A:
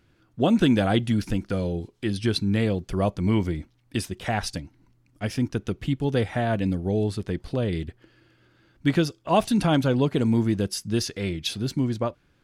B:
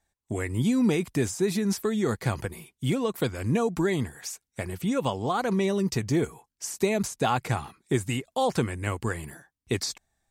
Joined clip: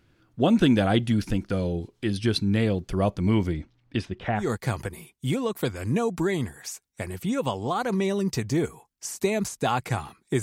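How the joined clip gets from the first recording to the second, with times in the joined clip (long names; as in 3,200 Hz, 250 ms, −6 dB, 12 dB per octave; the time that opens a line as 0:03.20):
A
0:03.53–0:04.48: low-pass filter 7,700 Hz → 1,800 Hz
0:04.41: continue with B from 0:02.00, crossfade 0.14 s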